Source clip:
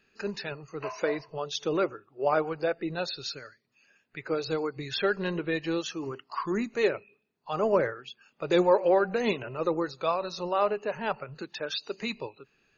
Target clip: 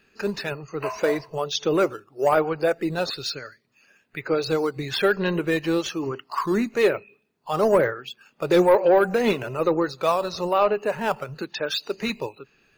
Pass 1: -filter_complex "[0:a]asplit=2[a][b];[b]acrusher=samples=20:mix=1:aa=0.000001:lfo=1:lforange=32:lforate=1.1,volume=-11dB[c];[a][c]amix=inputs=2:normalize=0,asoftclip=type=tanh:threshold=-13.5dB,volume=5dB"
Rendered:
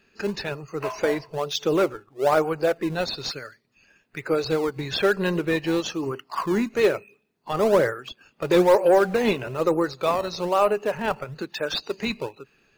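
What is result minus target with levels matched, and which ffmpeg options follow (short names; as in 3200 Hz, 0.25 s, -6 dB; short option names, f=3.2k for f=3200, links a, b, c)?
decimation with a swept rate: distortion +9 dB
-filter_complex "[0:a]asplit=2[a][b];[b]acrusher=samples=6:mix=1:aa=0.000001:lfo=1:lforange=9.6:lforate=1.1,volume=-11dB[c];[a][c]amix=inputs=2:normalize=0,asoftclip=type=tanh:threshold=-13.5dB,volume=5dB"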